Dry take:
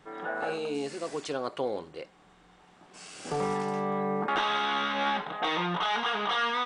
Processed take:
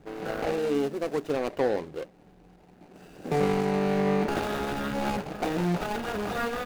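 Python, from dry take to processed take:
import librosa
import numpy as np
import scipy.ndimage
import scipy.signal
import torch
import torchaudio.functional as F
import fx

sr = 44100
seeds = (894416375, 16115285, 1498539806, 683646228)

y = scipy.ndimage.median_filter(x, 41, mode='constant')
y = y * 10.0 ** (7.5 / 20.0)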